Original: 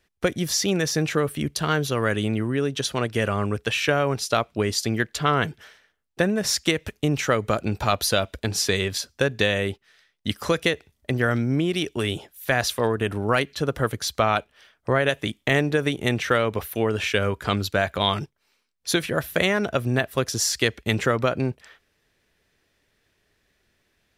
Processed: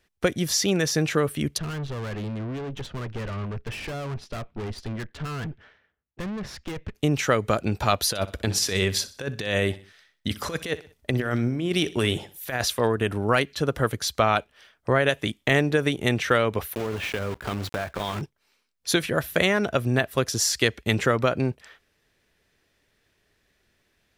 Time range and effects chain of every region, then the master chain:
1.58–6.95 s: low-pass 2.5 kHz + valve stage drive 33 dB, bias 0.8 + bass shelf 210 Hz +8.5 dB
8.09–12.65 s: compressor with a negative ratio -24 dBFS, ratio -0.5 + feedback delay 62 ms, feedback 41%, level -17 dB
16.75–18.23 s: block-companded coder 3-bit + treble shelf 3.5 kHz -11 dB + compression, threshold -24 dBFS
whole clip: none

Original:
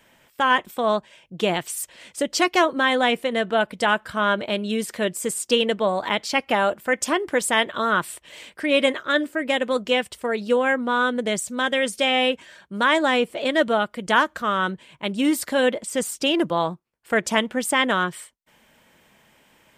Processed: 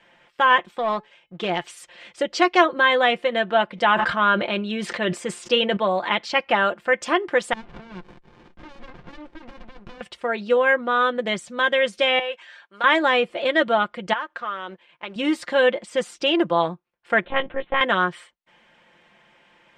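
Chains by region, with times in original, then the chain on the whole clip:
0.69–1.64 s: waveshaping leveller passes 1 + feedback comb 430 Hz, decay 0.26 s, mix 50%
3.67–5.77 s: treble shelf 8.6 kHz -7.5 dB + decay stretcher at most 52 dB/s
7.53–10.01 s: band-pass 200–7300 Hz + compression 3:1, threshold -31 dBFS + sliding maximum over 65 samples
12.19–12.84 s: Bessel high-pass 890 Hz + de-esser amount 95%
14.13–15.16 s: companding laws mixed up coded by A + tone controls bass -13 dB, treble -6 dB + compression 3:1, threshold -29 dBFS
17.24–17.81 s: treble shelf 2.6 kHz -8.5 dB + monotone LPC vocoder at 8 kHz 270 Hz
whole clip: low-pass 3.5 kHz 12 dB/octave; bass shelf 300 Hz -8.5 dB; comb 5.7 ms, depth 51%; trim +2 dB

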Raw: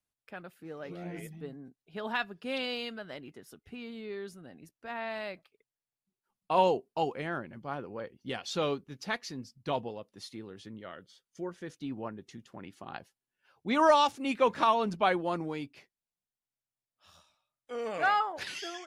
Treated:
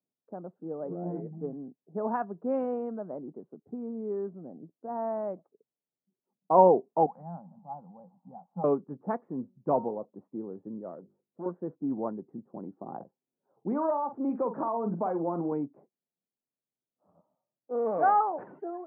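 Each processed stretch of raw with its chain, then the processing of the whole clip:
7.06–8.64 s: zero-crossing glitches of -30 dBFS + two resonant band-passes 380 Hz, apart 2.2 oct
9.41–10.05 s: distance through air 56 m + de-hum 184.9 Hz, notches 9
10.95–11.46 s: hum notches 50/100/150/200/250/300/350/400 Hz + transformer saturation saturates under 1.2 kHz
12.95–15.52 s: compression 4:1, threshold -33 dBFS + doubling 47 ms -10 dB
whole clip: low-pass 1 kHz 24 dB/octave; level-controlled noise filter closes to 520 Hz, open at -24.5 dBFS; high-pass 160 Hz 24 dB/octave; trim +7 dB

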